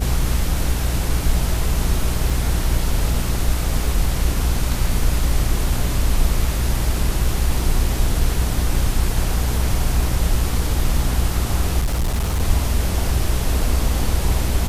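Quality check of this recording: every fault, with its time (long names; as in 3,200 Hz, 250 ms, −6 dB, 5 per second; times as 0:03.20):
mains hum 60 Hz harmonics 7 −23 dBFS
0:02.30: drop-out 2.6 ms
0:11.79–0:12.42: clipping −16 dBFS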